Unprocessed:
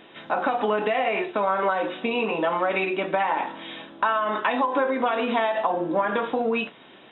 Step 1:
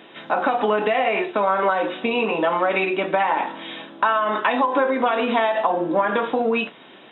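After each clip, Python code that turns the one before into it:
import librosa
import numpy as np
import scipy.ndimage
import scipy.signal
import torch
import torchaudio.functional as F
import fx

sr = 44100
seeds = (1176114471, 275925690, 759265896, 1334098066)

y = scipy.signal.sosfilt(scipy.signal.butter(2, 130.0, 'highpass', fs=sr, output='sos'), x)
y = y * librosa.db_to_amplitude(3.5)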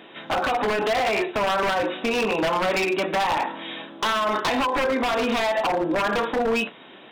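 y = 10.0 ** (-17.0 / 20.0) * (np.abs((x / 10.0 ** (-17.0 / 20.0) + 3.0) % 4.0 - 2.0) - 1.0)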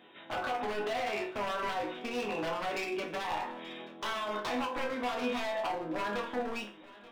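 y = fx.resonator_bank(x, sr, root=40, chord='major', decay_s=0.31)
y = y + 10.0 ** (-20.0 / 20.0) * np.pad(y, (int(881 * sr / 1000.0), 0))[:len(y)]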